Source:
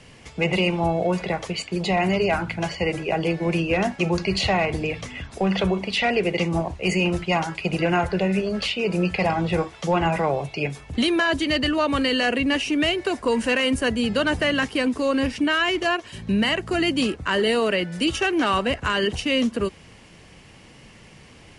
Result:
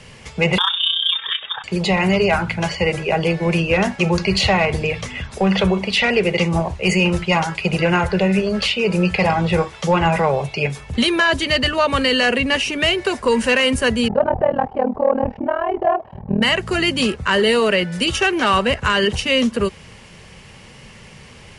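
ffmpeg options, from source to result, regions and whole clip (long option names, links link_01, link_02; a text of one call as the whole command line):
ffmpeg -i in.wav -filter_complex "[0:a]asettb=1/sr,asplit=3[link_01][link_02][link_03];[link_01]atrim=end=0.584[link_04];[link_02]atrim=start=0.58:end=1.64,asetpts=PTS-STARTPTS,afade=type=in:duration=0.004:curve=qsin,afade=type=out:start_time=1.056:duration=0.004:curve=qsin,lowshelf=frequency=170:gain=-3.5,tremolo=f=31:d=0.667,lowpass=frequency=3200:width_type=q:width=0.5098,lowpass=frequency=3200:width_type=q:width=0.6013,lowpass=frequency=3200:width_type=q:width=0.9,lowpass=frequency=3200:width_type=q:width=2.563,afreqshift=-3800[link_05];[link_03]atrim=start=1.636[link_06];[link_04][link_05]acrossfade=duration=0.004:curve1=hsin:curve2=qsin[link_07];[link_07][link_06]acrossfade=duration=0.004:curve1=qsin:curve2=hsin,asettb=1/sr,asplit=3[link_08][link_09][link_10];[link_08]atrim=end=14.084[link_11];[link_09]atrim=start=14.08:end=16.42,asetpts=PTS-STARTPTS,afade=type=in:duration=0.004:curve=qsin,afade=type=out:start_time=2.336:duration=0.004:curve=qsin,lowpass=frequency=770:width_type=q:width=6.6,tremolo=f=39:d=0.974[link_12];[link_10]atrim=start=16.416[link_13];[link_11][link_12]acrossfade=duration=0.004:curve1=hsin:curve2=qsin[link_14];[link_14][link_13]acrossfade=duration=0.004:curve1=qsin:curve2=hsin,equalizer=frequency=300:width=6.2:gain=-14.5,bandreject=frequency=700:width=12,acontrast=62" out.wav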